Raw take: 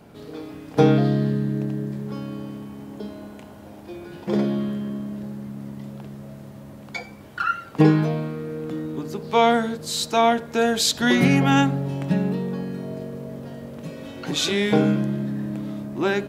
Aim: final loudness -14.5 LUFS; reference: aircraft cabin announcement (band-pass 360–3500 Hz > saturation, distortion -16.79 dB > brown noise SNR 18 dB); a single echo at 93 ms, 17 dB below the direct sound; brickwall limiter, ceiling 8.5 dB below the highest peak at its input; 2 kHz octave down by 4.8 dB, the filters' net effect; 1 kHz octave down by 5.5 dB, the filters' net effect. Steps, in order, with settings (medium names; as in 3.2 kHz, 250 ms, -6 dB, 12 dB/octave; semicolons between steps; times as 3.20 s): peaking EQ 1 kHz -7.5 dB; peaking EQ 2 kHz -3 dB; peak limiter -13 dBFS; band-pass 360–3500 Hz; delay 93 ms -17 dB; saturation -19.5 dBFS; brown noise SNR 18 dB; trim +18 dB